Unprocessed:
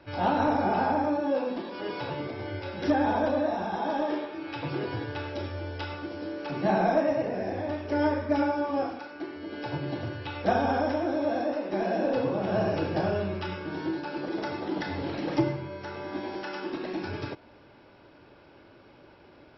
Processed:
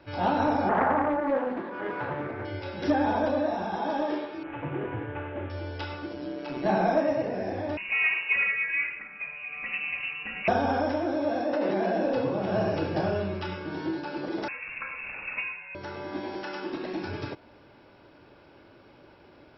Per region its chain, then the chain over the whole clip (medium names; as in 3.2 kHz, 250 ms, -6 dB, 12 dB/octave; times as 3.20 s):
0.69–2.45 s: resonant low-pass 1.6 kHz, resonance Q 2 + loudspeaker Doppler distortion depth 0.37 ms
4.43–5.50 s: CVSD coder 16 kbps + low-pass 2.2 kHz
6.13–6.66 s: comb 3.1 ms, depth 52% + AM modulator 130 Hz, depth 40%
7.77–10.48 s: band-stop 1.5 kHz, Q 9.7 + frequency inversion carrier 2.8 kHz
11.53–12.02 s: band-pass 110–5000 Hz + band-stop 2.5 kHz, Q 26 + level flattener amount 100%
14.48–15.75 s: elliptic high-pass 430 Hz, stop band 50 dB + frequency inversion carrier 3.1 kHz
whole clip: none